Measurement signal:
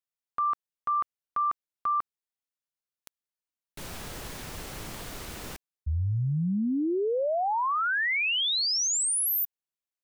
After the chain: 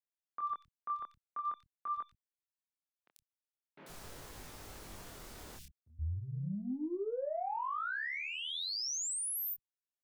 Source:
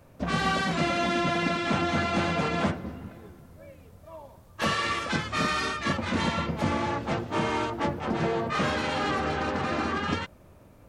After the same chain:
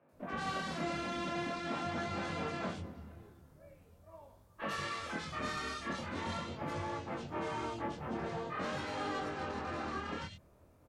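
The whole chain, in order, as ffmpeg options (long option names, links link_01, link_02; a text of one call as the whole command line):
ffmpeg -i in.wav -filter_complex "[0:a]aeval=exprs='0.224*(cos(1*acos(clip(val(0)/0.224,-1,1)))-cos(1*PI/2))+0.00447*(cos(2*acos(clip(val(0)/0.224,-1,1)))-cos(2*PI/2))+0.01*(cos(5*acos(clip(val(0)/0.224,-1,1)))-cos(5*PI/2))':channel_layout=same,acrossover=split=160|2700[link_01][link_02][link_03];[link_03]adelay=90[link_04];[link_01]adelay=120[link_05];[link_05][link_02][link_04]amix=inputs=3:normalize=0,flanger=delay=19.5:depth=7.5:speed=0.44,volume=-8.5dB" out.wav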